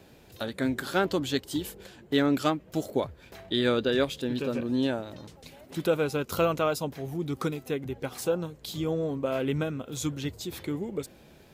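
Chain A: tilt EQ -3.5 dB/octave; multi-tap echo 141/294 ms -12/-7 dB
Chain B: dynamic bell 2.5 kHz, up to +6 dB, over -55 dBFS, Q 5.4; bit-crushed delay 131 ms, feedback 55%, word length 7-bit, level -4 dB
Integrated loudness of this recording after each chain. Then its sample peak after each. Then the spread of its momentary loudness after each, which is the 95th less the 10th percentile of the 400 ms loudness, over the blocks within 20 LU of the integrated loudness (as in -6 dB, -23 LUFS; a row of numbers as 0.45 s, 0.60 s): -24.0 LUFS, -28.0 LUFS; -8.0 dBFS, -8.0 dBFS; 9 LU, 11 LU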